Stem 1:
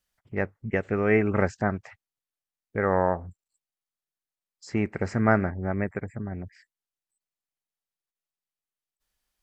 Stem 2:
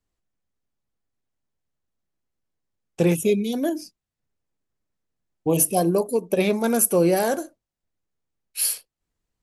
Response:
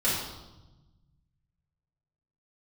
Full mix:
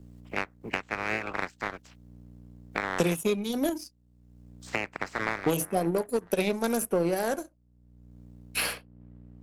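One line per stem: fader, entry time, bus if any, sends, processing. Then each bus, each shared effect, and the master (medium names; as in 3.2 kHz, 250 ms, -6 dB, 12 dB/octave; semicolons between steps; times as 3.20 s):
-14.0 dB, 0.00 s, no send, spectral peaks clipped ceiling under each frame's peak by 29 dB; hum 60 Hz, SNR 12 dB
-0.5 dB, 0.00 s, no send, none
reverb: none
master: power-law waveshaper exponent 1.4; three bands compressed up and down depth 100%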